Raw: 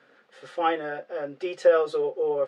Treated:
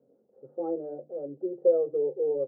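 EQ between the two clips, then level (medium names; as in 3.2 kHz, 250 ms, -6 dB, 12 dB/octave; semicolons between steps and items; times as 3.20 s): inverse Chebyshev low-pass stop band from 2.3 kHz, stop band 70 dB; hum notches 50/100/150/200/250/300/350 Hz; 0.0 dB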